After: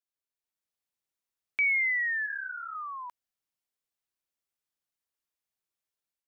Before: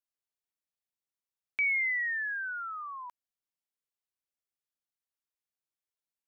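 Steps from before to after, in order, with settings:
automatic gain control gain up to 6.5 dB
0:02.26–0:02.75: micro pitch shift up and down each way 58 cents
level −4 dB

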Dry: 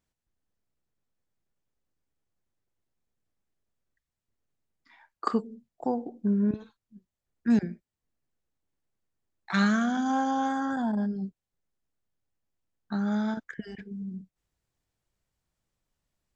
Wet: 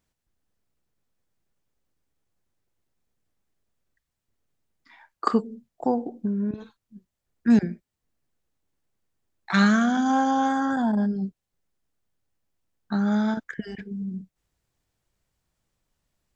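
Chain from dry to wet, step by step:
0:06.07–0:06.58: downward compressor, threshold −29 dBFS, peak gain reduction 7.5 dB
level +5 dB

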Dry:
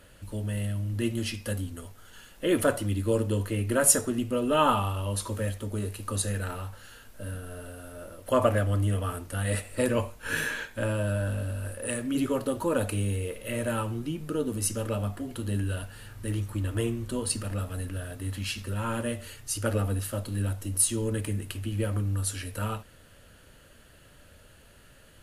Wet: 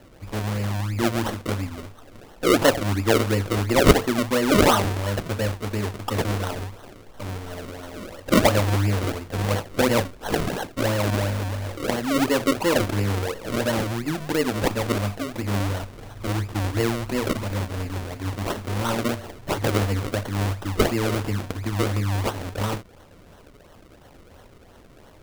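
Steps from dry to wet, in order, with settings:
sample-and-hold swept by an LFO 36×, swing 100% 2.9 Hz
bass and treble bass −3 dB, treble −1 dB
level +7 dB

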